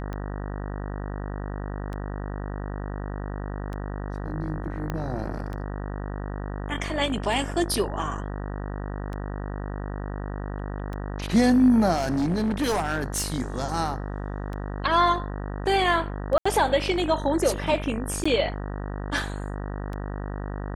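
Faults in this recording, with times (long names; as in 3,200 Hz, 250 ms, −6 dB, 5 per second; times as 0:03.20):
mains buzz 50 Hz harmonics 38 −32 dBFS
scratch tick 33 1/3 rpm −22 dBFS
0:04.90: click −16 dBFS
0:11.96–0:13.32: clipping −20.5 dBFS
0:16.38–0:16.45: drop-out 75 ms
0:18.24–0:18.25: drop-out 15 ms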